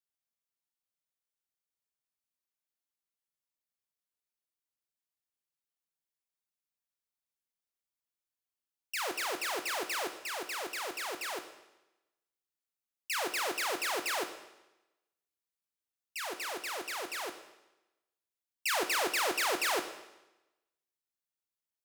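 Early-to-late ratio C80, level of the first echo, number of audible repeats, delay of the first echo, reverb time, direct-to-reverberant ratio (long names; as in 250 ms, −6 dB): 11.5 dB, no echo audible, no echo audible, no echo audible, 1.0 s, 7.0 dB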